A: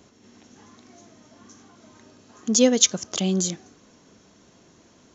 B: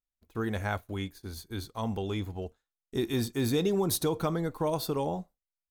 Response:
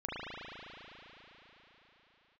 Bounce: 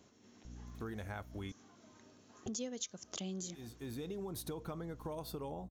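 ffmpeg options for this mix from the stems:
-filter_complex "[0:a]volume=-10dB,asplit=2[link_01][link_02];[1:a]equalizer=frequency=14000:width=0.47:gain=3,aeval=exprs='val(0)+0.00708*(sin(2*PI*60*n/s)+sin(2*PI*2*60*n/s)/2+sin(2*PI*3*60*n/s)/3+sin(2*PI*4*60*n/s)/4+sin(2*PI*5*60*n/s)/5)':channel_layout=same,adynamicequalizer=threshold=0.00355:dfrequency=3400:dqfactor=0.7:tfrequency=3400:tqfactor=0.7:attack=5:release=100:ratio=0.375:range=3:mode=cutabove:tftype=highshelf,adelay=450,volume=-5.5dB,asplit=3[link_03][link_04][link_05];[link_03]atrim=end=1.52,asetpts=PTS-STARTPTS,afade=type=out:start_time=1.516:duration=0.004:curve=hsin[link_06];[link_04]atrim=start=1.52:end=2.46,asetpts=PTS-STARTPTS,volume=0[link_07];[link_05]atrim=start=2.46,asetpts=PTS-STARTPTS,afade=type=in:duration=0.004:curve=hsin[link_08];[link_06][link_07][link_08]concat=n=3:v=0:a=1[link_09];[link_02]apad=whole_len=271242[link_10];[link_09][link_10]sidechaincompress=threshold=-46dB:ratio=8:attack=8:release=759[link_11];[link_01][link_11]amix=inputs=2:normalize=0,acompressor=threshold=-40dB:ratio=5"

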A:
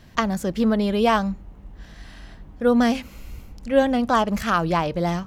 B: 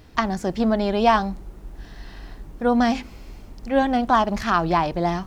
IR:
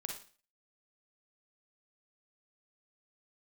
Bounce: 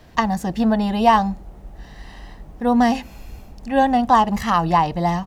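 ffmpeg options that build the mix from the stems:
-filter_complex "[0:a]volume=-1dB[link_01];[1:a]adelay=1.1,volume=-3.5dB[link_02];[link_01][link_02]amix=inputs=2:normalize=0,equalizer=frequency=700:width=1.7:gain=6.5"

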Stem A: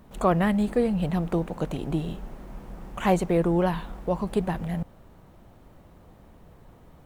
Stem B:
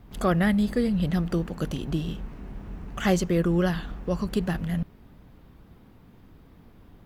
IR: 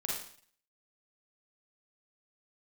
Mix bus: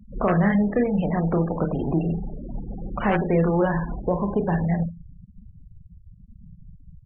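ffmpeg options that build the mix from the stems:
-filter_complex "[0:a]acrossover=split=400|820[link_01][link_02][link_03];[link_01]acompressor=threshold=-33dB:ratio=4[link_04];[link_02]acompressor=threshold=-36dB:ratio=4[link_05];[link_03]acompressor=threshold=-40dB:ratio=4[link_06];[link_04][link_05][link_06]amix=inputs=3:normalize=0,volume=0dB,asplit=2[link_07][link_08];[link_08]volume=-6.5dB[link_09];[1:a]aeval=exprs='(mod(3.76*val(0)+1,2)-1)/3.76':channel_layout=same,adynamicequalizer=threshold=0.00398:dfrequency=1700:dqfactor=7:tfrequency=1700:tqfactor=7:attack=5:release=100:ratio=0.375:range=2.5:mode=boostabove:tftype=bell,flanger=delay=8.1:depth=4.1:regen=21:speed=0.79:shape=triangular,volume=-1,adelay=28,volume=-5.5dB,asplit=2[link_10][link_11];[link_11]volume=-13dB[link_12];[2:a]atrim=start_sample=2205[link_13];[link_09][link_12]amix=inputs=2:normalize=0[link_14];[link_14][link_13]afir=irnorm=-1:irlink=0[link_15];[link_07][link_10][link_15]amix=inputs=3:normalize=0,acrossover=split=3000[link_16][link_17];[link_17]acompressor=threshold=-50dB:ratio=4:attack=1:release=60[link_18];[link_16][link_18]amix=inputs=2:normalize=0,afftfilt=real='re*gte(hypot(re,im),0.0251)':imag='im*gte(hypot(re,im),0.0251)':win_size=1024:overlap=0.75,acontrast=36"

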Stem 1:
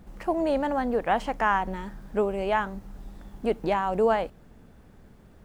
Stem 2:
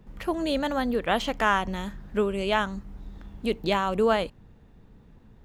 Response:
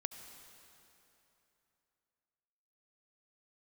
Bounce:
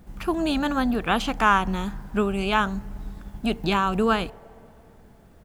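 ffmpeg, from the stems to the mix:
-filter_complex "[0:a]highshelf=frequency=6800:gain=5,volume=-1.5dB,asplit=3[link_01][link_02][link_03];[link_02]volume=-11.5dB[link_04];[1:a]adelay=0.5,volume=2.5dB[link_05];[link_03]apad=whole_len=240168[link_06];[link_05][link_06]sidechaingate=range=-33dB:threshold=-43dB:ratio=16:detection=peak[link_07];[2:a]atrim=start_sample=2205[link_08];[link_04][link_08]afir=irnorm=-1:irlink=0[link_09];[link_01][link_07][link_09]amix=inputs=3:normalize=0"

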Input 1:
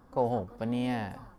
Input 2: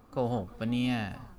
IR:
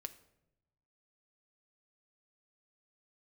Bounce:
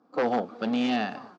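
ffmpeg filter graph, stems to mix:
-filter_complex "[0:a]equalizer=frequency=1700:width=0.32:gain=-9.5,volume=-3.5dB[link_01];[1:a]agate=range=-33dB:threshold=-46dB:ratio=3:detection=peak,adelay=9.2,volume=3dB,asplit=2[link_02][link_03];[link_03]volume=-12.5dB[link_04];[2:a]atrim=start_sample=2205[link_05];[link_04][link_05]afir=irnorm=-1:irlink=0[link_06];[link_01][link_02][link_06]amix=inputs=3:normalize=0,aeval=exprs='0.0944*(abs(mod(val(0)/0.0944+3,4)-2)-1)':channel_layout=same,highpass=frequency=210:width=0.5412,highpass=frequency=210:width=1.3066,equalizer=frequency=310:width_type=q:width=4:gain=5,equalizer=frequency=460:width_type=q:width=4:gain=4,equalizer=frequency=740:width_type=q:width=4:gain=6,equalizer=frequency=1300:width_type=q:width=4:gain=5,equalizer=frequency=4500:width_type=q:width=4:gain=3,lowpass=frequency=5900:width=0.5412,lowpass=frequency=5900:width=1.3066"

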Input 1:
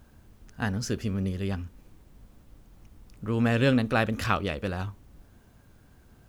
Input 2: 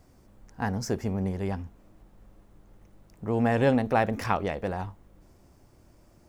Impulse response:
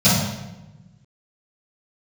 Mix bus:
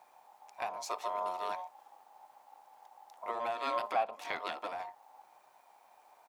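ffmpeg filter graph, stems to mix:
-filter_complex "[0:a]aeval=exprs='val(0)*sin(2*PI*820*n/s)':channel_layout=same,volume=-1.5dB[link_01];[1:a]tremolo=f=1.5:d=0.77,asplit=3[link_02][link_03][link_04];[link_02]bandpass=frequency=730:width_type=q:width=8,volume=0dB[link_05];[link_03]bandpass=frequency=1090:width_type=q:width=8,volume=-6dB[link_06];[link_04]bandpass=frequency=2440:width_type=q:width=8,volume=-9dB[link_07];[link_05][link_06][link_07]amix=inputs=3:normalize=0,adelay=5.2,volume=2dB,asplit=2[link_08][link_09];[link_09]apad=whole_len=277081[link_10];[link_01][link_10]sidechaincompress=threshold=-42dB:ratio=8:attack=49:release=400[link_11];[link_11][link_08]amix=inputs=2:normalize=0,highpass=frequency=730:poles=1"

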